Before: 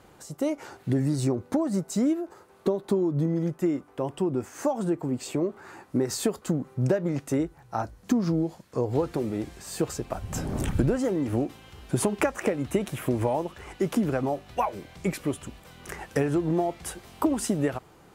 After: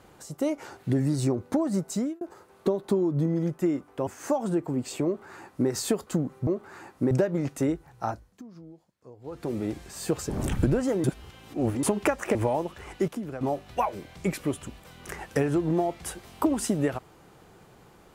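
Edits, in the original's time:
0:01.91–0:02.21: fade out
0:04.07–0:04.42: remove
0:05.40–0:06.04: duplicate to 0:06.82
0:07.75–0:09.30: duck −21.5 dB, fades 0.35 s
0:10.01–0:10.46: remove
0:11.20–0:11.99: reverse
0:12.51–0:13.15: remove
0:13.88–0:14.21: clip gain −9.5 dB

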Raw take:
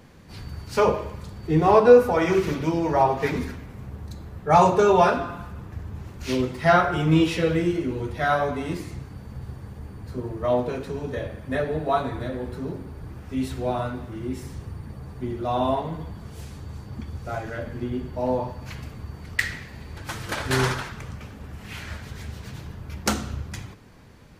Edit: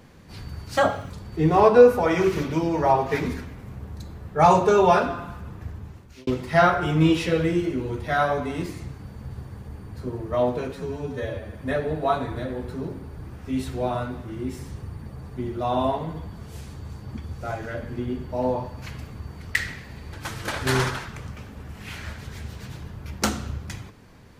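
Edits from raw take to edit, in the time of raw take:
0:00.77–0:01.21: play speed 133%
0:05.78–0:06.38: fade out linear
0:10.83–0:11.37: time-stretch 1.5×

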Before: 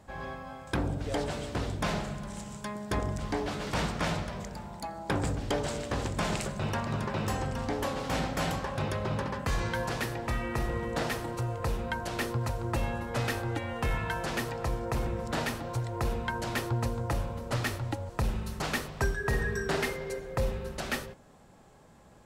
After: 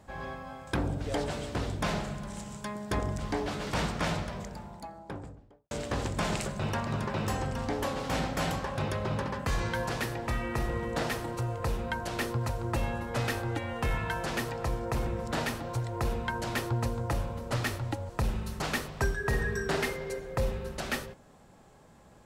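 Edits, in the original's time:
0:04.23–0:05.71: fade out and dull

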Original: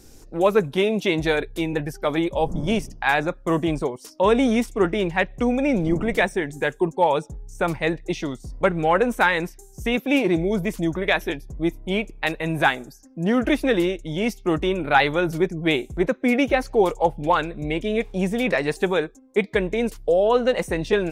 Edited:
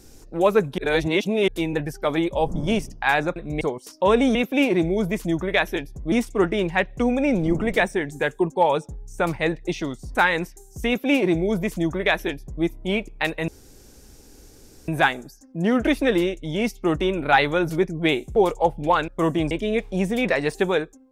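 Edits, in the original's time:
0:00.78–0:01.48: reverse
0:03.36–0:03.79: swap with 0:17.48–0:17.73
0:08.56–0:09.17: remove
0:09.89–0:11.66: duplicate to 0:04.53
0:12.50: splice in room tone 1.40 s
0:15.98–0:16.76: remove

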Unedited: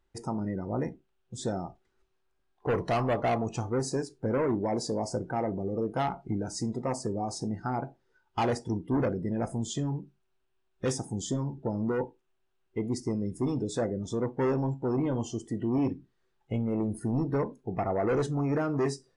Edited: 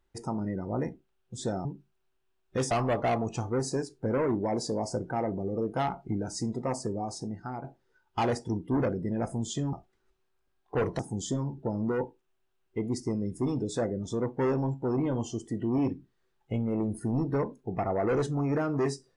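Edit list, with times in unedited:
0:01.65–0:02.91: swap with 0:09.93–0:10.99
0:07.00–0:07.84: fade out, to −7.5 dB

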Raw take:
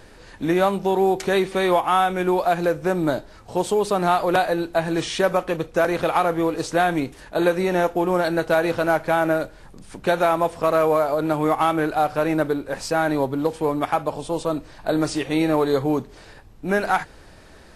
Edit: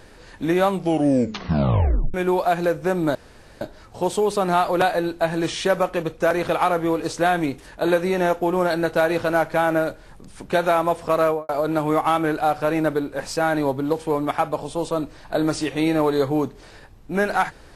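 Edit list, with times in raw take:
0:00.70: tape stop 1.44 s
0:03.15: splice in room tone 0.46 s
0:10.78–0:11.03: fade out and dull

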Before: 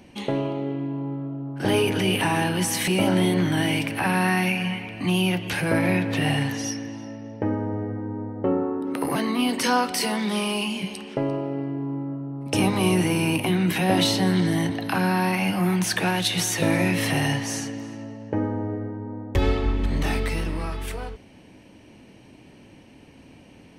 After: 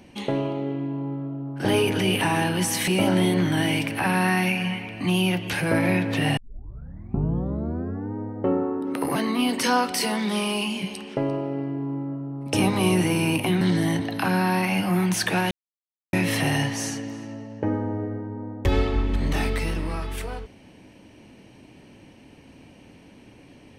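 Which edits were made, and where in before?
0:06.37: tape start 1.76 s
0:13.61–0:14.31: remove
0:16.21–0:16.83: silence

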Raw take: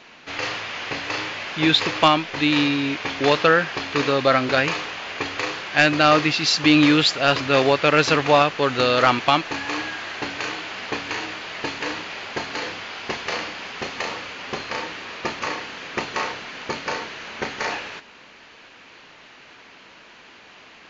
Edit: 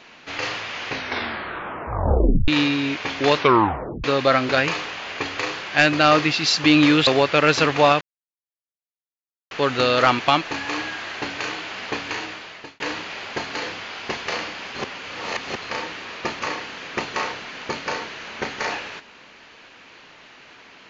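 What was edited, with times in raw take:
0:00.88: tape stop 1.60 s
0:03.37: tape stop 0.67 s
0:07.07–0:07.57: remove
0:08.51: splice in silence 1.50 s
0:10.96–0:11.80: fade out equal-power
0:13.75–0:14.62: reverse

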